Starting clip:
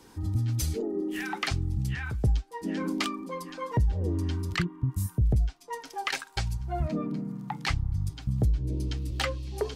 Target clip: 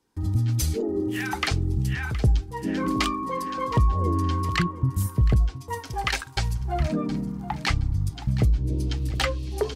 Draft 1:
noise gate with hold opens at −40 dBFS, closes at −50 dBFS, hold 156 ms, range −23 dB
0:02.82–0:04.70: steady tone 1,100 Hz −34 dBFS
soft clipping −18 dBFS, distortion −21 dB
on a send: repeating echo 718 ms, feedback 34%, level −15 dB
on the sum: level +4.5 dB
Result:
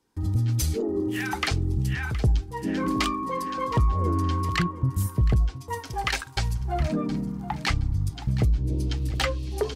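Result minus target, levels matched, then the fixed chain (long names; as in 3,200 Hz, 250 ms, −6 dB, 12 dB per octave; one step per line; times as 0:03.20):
soft clipping: distortion +17 dB
noise gate with hold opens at −40 dBFS, closes at −50 dBFS, hold 156 ms, range −23 dB
0:02.82–0:04.70: steady tone 1,100 Hz −34 dBFS
soft clipping −8.5 dBFS, distortion −39 dB
on a send: repeating echo 718 ms, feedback 34%, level −15 dB
on the sum: level +4.5 dB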